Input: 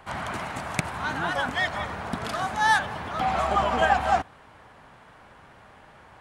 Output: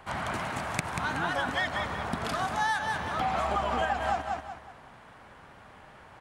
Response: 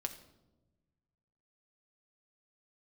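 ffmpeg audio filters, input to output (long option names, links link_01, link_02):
-filter_complex "[0:a]asplit=2[link_01][link_02];[link_02]aecho=0:1:186|372|558|744:0.355|0.11|0.0341|0.0106[link_03];[link_01][link_03]amix=inputs=2:normalize=0,acompressor=threshold=-24dB:ratio=6,volume=-1dB"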